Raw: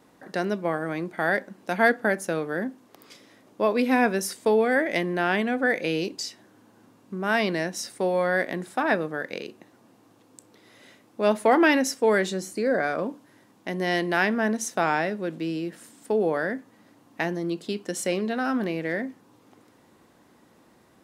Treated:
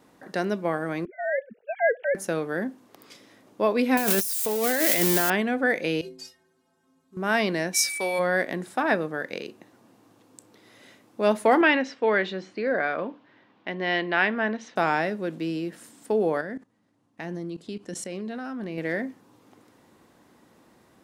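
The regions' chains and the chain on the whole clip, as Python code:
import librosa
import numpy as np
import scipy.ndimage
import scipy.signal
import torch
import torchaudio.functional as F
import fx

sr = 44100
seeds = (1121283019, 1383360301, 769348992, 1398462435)

y = fx.chain(x, sr, fx.sine_speech(),
    fx.fixed_phaser(hz=300.0, stages=6), at=(1.05, 2.15))
y = fx.chain(y, sr, fx.crossing_spikes(level_db=-15.5),
    fx.high_shelf(hz=11000.0, db=7.5),
    fx.over_compress(threshold_db=-24.0, ratio=-1.0), at=(3.97, 5.3))
y = fx.chain(y, sr, fx.cvsd(bps=64000),
    fx.stiff_resonator(f0_hz=78.0, decay_s=0.66, stiffness=0.03), at=(6.01, 7.17))
y = fx.tilt_eq(y, sr, slope=4.0, at=(7.73, 8.18), fade=0.02)
y = fx.dmg_tone(y, sr, hz=2300.0, level_db=-31.0, at=(7.73, 8.18), fade=0.02)
y = fx.chain(y, sr, fx.lowpass(hz=3400.0, slope=24),
    fx.tilt_eq(slope=2.0), at=(11.61, 14.76))
y = fx.chain(y, sr, fx.lowpass(hz=11000.0, slope=24),
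    fx.level_steps(step_db=18),
    fx.low_shelf(hz=190.0, db=9.0), at=(16.41, 18.78))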